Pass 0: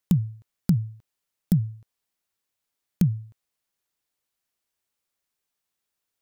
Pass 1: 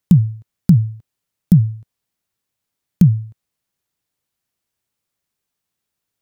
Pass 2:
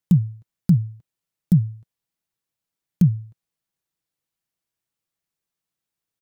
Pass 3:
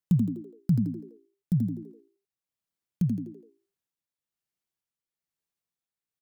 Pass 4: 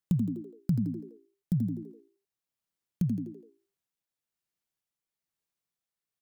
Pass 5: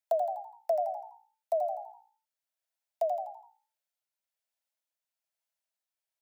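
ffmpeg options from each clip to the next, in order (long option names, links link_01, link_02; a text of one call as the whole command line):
ffmpeg -i in.wav -af "equalizer=frequency=120:width=0.56:gain=9,volume=2.5dB" out.wav
ffmpeg -i in.wav -af "aecho=1:1:6.1:0.32,volume=-7dB" out.wav
ffmpeg -i in.wav -filter_complex "[0:a]tremolo=f=1.1:d=0.48,asplit=2[link_01][link_02];[link_02]asplit=5[link_03][link_04][link_05][link_06][link_07];[link_03]adelay=83,afreqshift=57,volume=-5dB[link_08];[link_04]adelay=166,afreqshift=114,volume=-12.7dB[link_09];[link_05]adelay=249,afreqshift=171,volume=-20.5dB[link_10];[link_06]adelay=332,afreqshift=228,volume=-28.2dB[link_11];[link_07]adelay=415,afreqshift=285,volume=-36dB[link_12];[link_08][link_09][link_10][link_11][link_12]amix=inputs=5:normalize=0[link_13];[link_01][link_13]amix=inputs=2:normalize=0,volume=-6dB" out.wav
ffmpeg -i in.wav -af "acompressor=threshold=-25dB:ratio=2.5" out.wav
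ffmpeg -i in.wav -af "asuperstop=centerf=680:order=4:qfactor=5.1,afreqshift=490,volume=-1.5dB" out.wav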